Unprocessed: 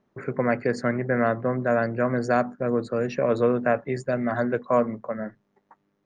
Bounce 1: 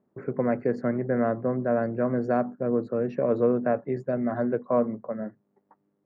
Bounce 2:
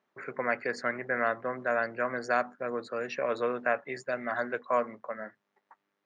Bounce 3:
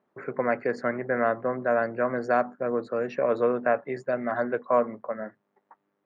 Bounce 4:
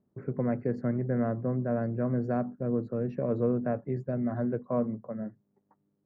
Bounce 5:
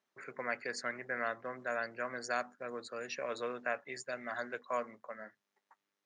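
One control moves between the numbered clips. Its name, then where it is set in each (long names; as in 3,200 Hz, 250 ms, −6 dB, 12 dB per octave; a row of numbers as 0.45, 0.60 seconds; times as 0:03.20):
resonant band-pass, frequency: 290, 2,400, 930, 110, 6,500 Hertz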